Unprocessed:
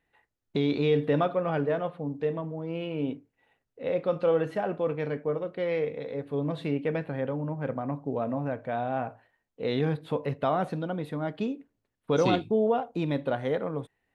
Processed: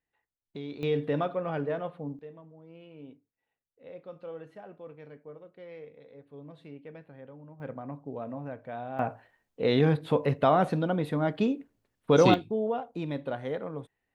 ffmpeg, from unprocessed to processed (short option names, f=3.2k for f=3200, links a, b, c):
-af "asetnsamples=n=441:p=0,asendcmd='0.83 volume volume -4dB;2.19 volume volume -17dB;7.6 volume volume -7.5dB;8.99 volume volume 4dB;12.34 volume volume -5dB',volume=-13dB"